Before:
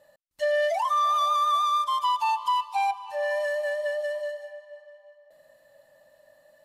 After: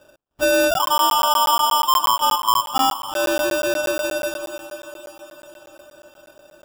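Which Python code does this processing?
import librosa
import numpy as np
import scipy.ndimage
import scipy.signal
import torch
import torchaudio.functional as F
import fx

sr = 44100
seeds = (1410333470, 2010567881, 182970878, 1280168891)

y = fx.high_shelf(x, sr, hz=4100.0, db=-11.0, at=(0.71, 2.76))
y = fx.sample_hold(y, sr, seeds[0], rate_hz=2100.0, jitter_pct=0)
y = fx.echo_diffused(y, sr, ms=460, feedback_pct=58, wet_db=-14)
y = fx.buffer_crackle(y, sr, first_s=0.74, period_s=0.12, block=512, kind='zero')
y = F.gain(torch.from_numpy(y), 7.0).numpy()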